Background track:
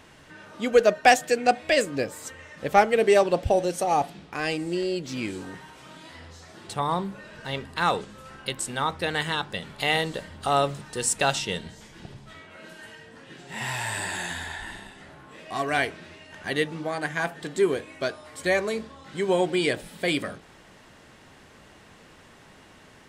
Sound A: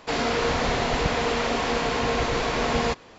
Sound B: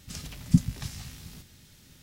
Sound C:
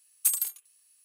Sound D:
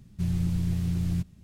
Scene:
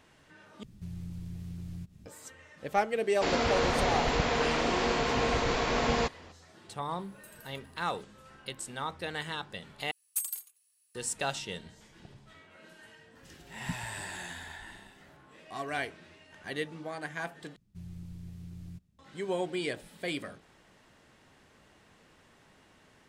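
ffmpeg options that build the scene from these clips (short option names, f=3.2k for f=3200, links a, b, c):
-filter_complex "[4:a]asplit=2[a][b];[3:a]asplit=2[c][d];[0:a]volume=-9.5dB[e];[a]acompressor=threshold=-51dB:ratio=2:attack=29:release=65:knee=1:detection=rms[f];[c]acompressor=threshold=-46dB:ratio=6:attack=3.2:release=140:knee=1:detection=peak[g];[d]aecho=1:1:83|166:0.0708|0.0177[h];[e]asplit=4[i][j][k][l];[i]atrim=end=0.634[m];[f]atrim=end=1.43,asetpts=PTS-STARTPTS,volume=-0.5dB[n];[j]atrim=start=2.056:end=9.914[o];[h]atrim=end=1.04,asetpts=PTS-STARTPTS,volume=-8dB[p];[k]atrim=start=10.946:end=17.564[q];[b]atrim=end=1.43,asetpts=PTS-STARTPTS,volume=-17.5dB[r];[l]atrim=start=18.986[s];[1:a]atrim=end=3.18,asetpts=PTS-STARTPTS,volume=-4dB,afade=t=in:d=0.004:c=hsin,afade=t=out:st=3.176:d=0.004:c=hsin,adelay=3140[t];[g]atrim=end=1.04,asetpts=PTS-STARTPTS,volume=-8dB,afade=t=in:d=0.004:c=hsin,afade=t=out:st=1.036:d=0.004:c=hsin,adelay=6990[u];[2:a]atrim=end=2.02,asetpts=PTS-STARTPTS,volume=-17dB,afade=t=in:d=0.004:c=hsin,afade=t=out:st=2.016:d=0.004:c=hsin,adelay=13150[v];[m][n]acrossfade=d=0.004:c1=hsin:c2=hsin[w];[w][o]acrossfade=d=0.004:c1=hsin:c2=hsin[x];[x][p]acrossfade=d=0.004:c1=hsin:c2=hsin[y];[y][q]acrossfade=d=0.004:c1=hsin:c2=hsin[z];[z][r]acrossfade=d=0.004:c1=hsin:c2=hsin[aa];[aa][s]acrossfade=d=0.004:c1=hsin:c2=hsin[ab];[ab][t][u][v]amix=inputs=4:normalize=0"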